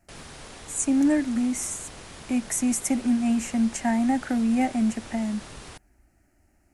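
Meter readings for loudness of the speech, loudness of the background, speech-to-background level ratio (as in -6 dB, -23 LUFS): -25.0 LUFS, -42.5 LUFS, 17.5 dB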